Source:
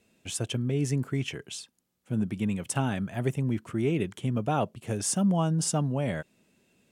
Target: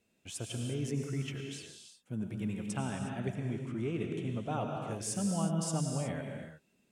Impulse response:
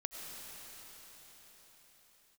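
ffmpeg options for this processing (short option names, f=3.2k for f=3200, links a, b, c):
-filter_complex "[0:a]asettb=1/sr,asplit=3[a][b][c];[a]atrim=end=2.594[d];[b]atrim=start=2.59:end=4.92,asetpts=PTS-STARTPTS,afade=t=in:d=0.004:c=qsin,afade=t=out:st=2.326:d=0.004:c=qsin,lowpass=8.3k[e];[c]atrim=start=4.916[f];[d][e]acrossfade=d=0.004:c1=hsin:c2=qsin[g];[g][f]acrossfade=d=0.004:c1=qsin:c2=hsin[h];[1:a]atrim=start_sample=2205,afade=t=out:st=0.42:d=0.01,atrim=end_sample=18963[i];[h][i]afir=irnorm=-1:irlink=0,volume=-5.5dB"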